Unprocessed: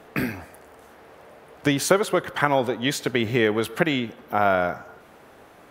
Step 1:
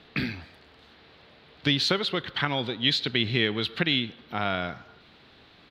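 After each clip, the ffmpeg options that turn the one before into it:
ffmpeg -i in.wav -af "firequalizer=gain_entry='entry(120,0);entry(550,-11);entry(4000,12);entry(6100,-11);entry(9400,-21)':delay=0.05:min_phase=1,volume=-1dB" out.wav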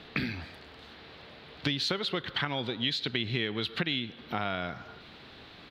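ffmpeg -i in.wav -af "acompressor=threshold=-35dB:ratio=3,volume=4.5dB" out.wav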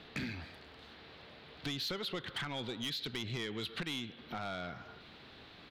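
ffmpeg -i in.wav -af "asoftclip=type=tanh:threshold=-27.5dB,volume=-4.5dB" out.wav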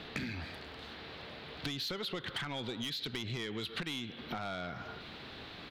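ffmpeg -i in.wav -af "acompressor=threshold=-43dB:ratio=6,volume=7dB" out.wav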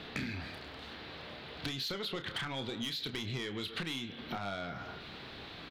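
ffmpeg -i in.wav -filter_complex "[0:a]asplit=2[link_01][link_02];[link_02]adelay=30,volume=-8.5dB[link_03];[link_01][link_03]amix=inputs=2:normalize=0" out.wav

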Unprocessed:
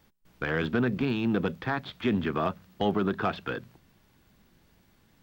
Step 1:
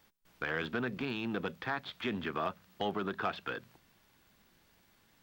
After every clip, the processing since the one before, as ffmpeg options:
ffmpeg -i in.wav -filter_complex "[0:a]lowshelf=frequency=420:gain=-10,asplit=2[link_01][link_02];[link_02]acompressor=threshold=-40dB:ratio=6,volume=-1.5dB[link_03];[link_01][link_03]amix=inputs=2:normalize=0,volume=-5dB" out.wav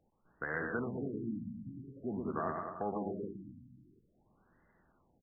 ffmpeg -i in.wav -af "aecho=1:1:120|216|292.8|354.2|403.4:0.631|0.398|0.251|0.158|0.1,afftfilt=real='re*lt(b*sr/1024,280*pow(2100/280,0.5+0.5*sin(2*PI*0.48*pts/sr)))':imag='im*lt(b*sr/1024,280*pow(2100/280,0.5+0.5*sin(2*PI*0.48*pts/sr)))':win_size=1024:overlap=0.75,volume=-2.5dB" out.wav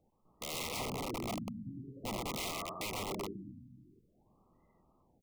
ffmpeg -i in.wav -af "aeval=exprs='(mod(50.1*val(0)+1,2)-1)/50.1':channel_layout=same,asuperstop=centerf=1600:order=12:qfactor=2.3,volume=1.5dB" out.wav

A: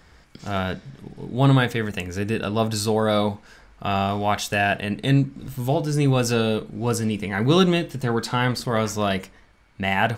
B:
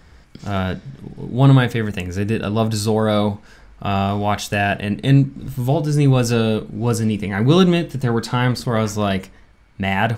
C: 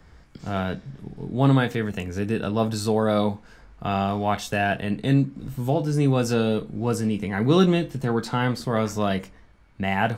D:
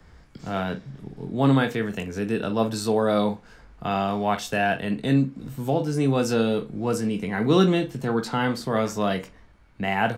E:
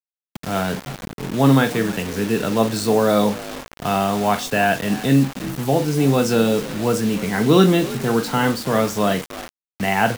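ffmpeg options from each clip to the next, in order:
ffmpeg -i in.wav -af "lowshelf=frequency=290:gain=6,volume=1dB" out.wav
ffmpeg -i in.wav -filter_complex "[0:a]acrossover=split=140|1300|1700[link_01][link_02][link_03][link_04];[link_01]acompressor=threshold=-31dB:ratio=6[link_05];[link_04]flanger=delay=19:depth=2.4:speed=0.34[link_06];[link_05][link_02][link_03][link_06]amix=inputs=4:normalize=0,volume=-3.5dB" out.wav
ffmpeg -i in.wav -filter_complex "[0:a]acrossover=split=130|5400[link_01][link_02][link_03];[link_01]acompressor=threshold=-44dB:ratio=6[link_04];[link_02]asplit=2[link_05][link_06];[link_06]adelay=44,volume=-12.5dB[link_07];[link_05][link_07]amix=inputs=2:normalize=0[link_08];[link_04][link_08][link_03]amix=inputs=3:normalize=0" out.wav
ffmpeg -i in.wav -filter_complex "[0:a]asplit=4[link_01][link_02][link_03][link_04];[link_02]adelay=316,afreqshift=50,volume=-17dB[link_05];[link_03]adelay=632,afreqshift=100,volume=-25.2dB[link_06];[link_04]adelay=948,afreqshift=150,volume=-33.4dB[link_07];[link_01][link_05][link_06][link_07]amix=inputs=4:normalize=0,acrusher=bits=5:mix=0:aa=0.000001,volume=5dB" out.wav

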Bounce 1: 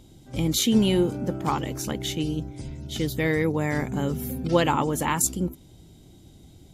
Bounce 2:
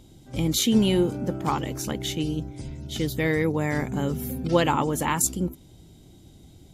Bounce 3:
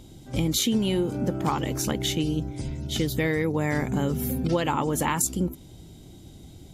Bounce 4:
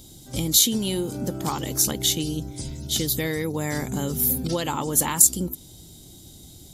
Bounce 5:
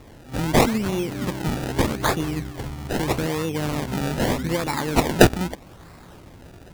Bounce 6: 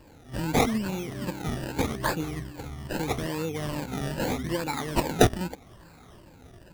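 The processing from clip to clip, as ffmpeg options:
ffmpeg -i in.wav -af anull out.wav
ffmpeg -i in.wav -af "acompressor=threshold=-25dB:ratio=6,volume=4dB" out.wav
ffmpeg -i in.wav -af "aexciter=amount=3.8:drive=4.7:freq=3500,volume=-2dB" out.wav
ffmpeg -i in.wav -af "acrusher=samples=28:mix=1:aa=0.000001:lfo=1:lforange=28:lforate=0.8,volume=1.5dB" out.wav
ffmpeg -i in.wav -af "afftfilt=real='re*pow(10,10/40*sin(2*PI*(1.3*log(max(b,1)*sr/1024/100)/log(2)-(-2.4)*(pts-256)/sr)))':imag='im*pow(10,10/40*sin(2*PI*(1.3*log(max(b,1)*sr/1024/100)/log(2)-(-2.4)*(pts-256)/sr)))':win_size=1024:overlap=0.75,volume=-7dB" out.wav

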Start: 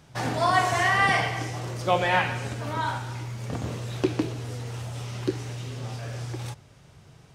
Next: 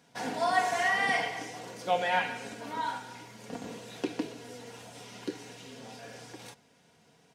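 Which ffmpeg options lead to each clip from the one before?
ffmpeg -i in.wav -af "highpass=200,bandreject=frequency=1200:width=8.5,aecho=1:1:4.2:0.57,volume=-6.5dB" out.wav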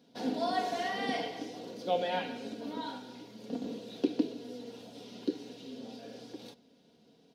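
ffmpeg -i in.wav -af "equalizer=frequency=125:width_type=o:width=1:gain=-5,equalizer=frequency=250:width_type=o:width=1:gain=11,equalizer=frequency=500:width_type=o:width=1:gain=5,equalizer=frequency=1000:width_type=o:width=1:gain=-5,equalizer=frequency=2000:width_type=o:width=1:gain=-8,equalizer=frequency=4000:width_type=o:width=1:gain=9,equalizer=frequency=8000:width_type=o:width=1:gain=-11,volume=-4.5dB" out.wav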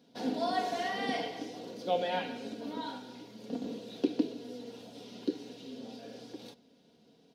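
ffmpeg -i in.wav -af anull out.wav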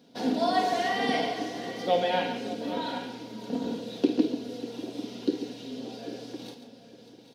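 ffmpeg -i in.wav -af "aecho=1:1:51|139|591|793|842:0.282|0.299|0.158|0.188|0.15,volume=5.5dB" out.wav

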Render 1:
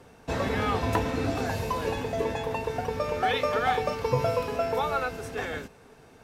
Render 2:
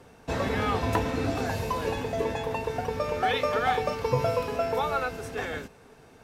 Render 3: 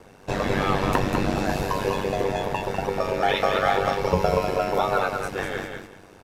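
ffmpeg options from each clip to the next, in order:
ffmpeg -i in.wav -af anull out.wav
ffmpeg -i in.wav -af "aecho=1:1:198|396|594:0.562|0.118|0.0248,aeval=exprs='val(0)*sin(2*PI*48*n/s)':channel_layout=same,volume=6dB" out.wav

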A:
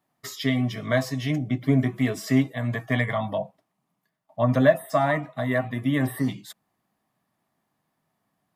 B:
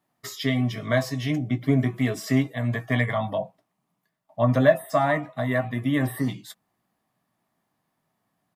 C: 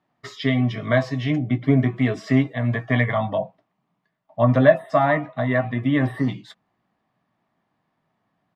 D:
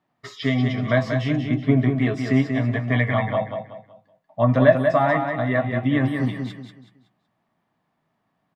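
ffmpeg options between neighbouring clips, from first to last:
ffmpeg -i in.wav -filter_complex "[0:a]asplit=2[link_01][link_02];[link_02]adelay=17,volume=-13dB[link_03];[link_01][link_03]amix=inputs=2:normalize=0" out.wav
ffmpeg -i in.wav -af "lowpass=3400,volume=3.5dB" out.wav
ffmpeg -i in.wav -af "aecho=1:1:187|374|561|748:0.501|0.165|0.0546|0.018,volume=-1dB" out.wav

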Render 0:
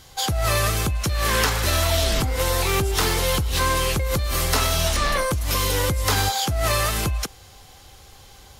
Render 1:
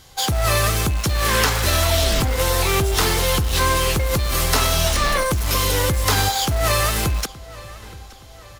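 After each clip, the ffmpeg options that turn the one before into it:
ffmpeg -i in.wav -filter_complex "[0:a]asplit=2[link_01][link_02];[link_02]acrusher=bits=3:mix=0:aa=0.000001,volume=-9.5dB[link_03];[link_01][link_03]amix=inputs=2:normalize=0,asplit=2[link_04][link_05];[link_05]adelay=872,lowpass=frequency=4800:poles=1,volume=-19dB,asplit=2[link_06][link_07];[link_07]adelay=872,lowpass=frequency=4800:poles=1,volume=0.49,asplit=2[link_08][link_09];[link_09]adelay=872,lowpass=frequency=4800:poles=1,volume=0.49,asplit=2[link_10][link_11];[link_11]adelay=872,lowpass=frequency=4800:poles=1,volume=0.49[link_12];[link_04][link_06][link_08][link_10][link_12]amix=inputs=5:normalize=0" out.wav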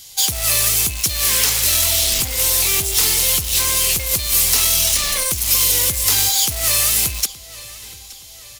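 ffmpeg -i in.wav -af "asoftclip=type=hard:threshold=-15.5dB,aexciter=amount=2.3:drive=9.4:freq=2100,highshelf=frequency=4700:gain=5.5,volume=-8dB" out.wav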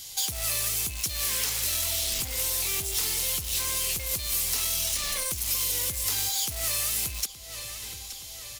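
ffmpeg -i in.wav -af "acompressor=threshold=-32dB:ratio=2,volume=-1.5dB" out.wav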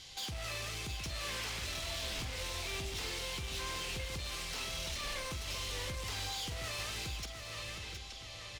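ffmpeg -i in.wav -af "lowpass=3400,volume=36dB,asoftclip=hard,volume=-36dB,aecho=1:1:43|716:0.266|0.447,volume=-1.5dB" out.wav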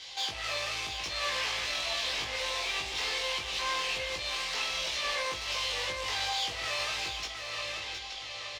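ffmpeg -i in.wav -filter_complex "[0:a]acrossover=split=430 6100:gain=0.126 1 0.178[link_01][link_02][link_03];[link_01][link_02][link_03]amix=inputs=3:normalize=0,bandreject=frequency=1400:width=11,asplit=2[link_04][link_05];[link_05]adelay=19,volume=-2dB[link_06];[link_04][link_06]amix=inputs=2:normalize=0,volume=7dB" out.wav

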